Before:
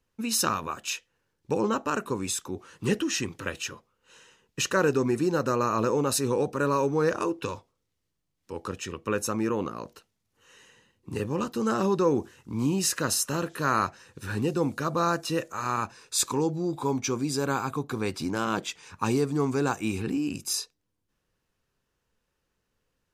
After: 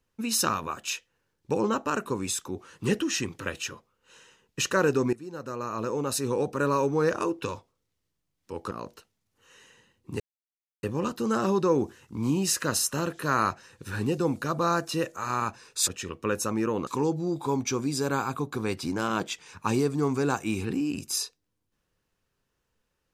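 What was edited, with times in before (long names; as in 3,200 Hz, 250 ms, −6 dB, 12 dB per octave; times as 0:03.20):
0:05.13–0:06.60: fade in, from −20 dB
0:08.71–0:09.70: move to 0:16.24
0:11.19: splice in silence 0.63 s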